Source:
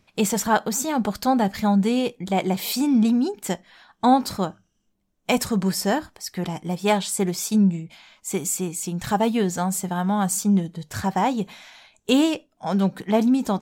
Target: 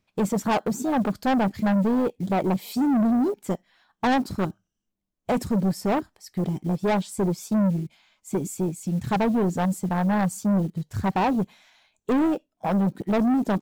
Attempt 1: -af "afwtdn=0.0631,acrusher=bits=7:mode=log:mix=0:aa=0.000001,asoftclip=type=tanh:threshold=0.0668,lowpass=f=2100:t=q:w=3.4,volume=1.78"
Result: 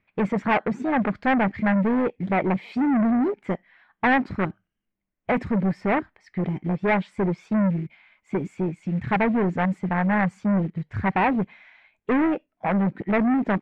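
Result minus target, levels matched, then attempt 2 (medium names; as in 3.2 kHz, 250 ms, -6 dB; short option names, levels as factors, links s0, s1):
2 kHz band +7.0 dB
-af "afwtdn=0.0631,acrusher=bits=7:mode=log:mix=0:aa=0.000001,asoftclip=type=tanh:threshold=0.0668,volume=1.78"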